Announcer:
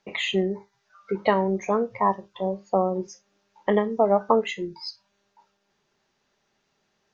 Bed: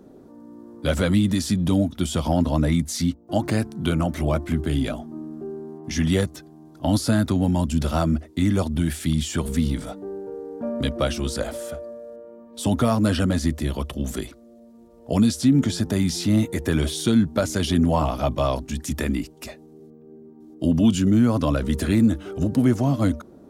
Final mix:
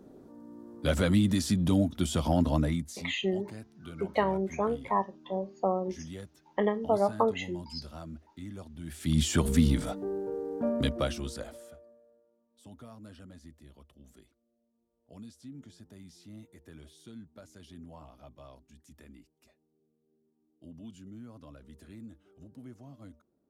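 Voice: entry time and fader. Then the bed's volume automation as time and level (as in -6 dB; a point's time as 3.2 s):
2.90 s, -6.0 dB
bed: 2.56 s -5 dB
3.19 s -22 dB
8.78 s -22 dB
9.2 s -1 dB
10.66 s -1 dB
12.36 s -29 dB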